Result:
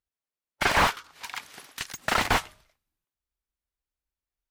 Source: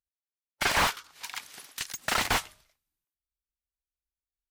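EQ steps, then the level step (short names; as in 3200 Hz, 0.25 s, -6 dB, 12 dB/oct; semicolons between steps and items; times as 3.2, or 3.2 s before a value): high shelf 3100 Hz -8.5 dB; +5.0 dB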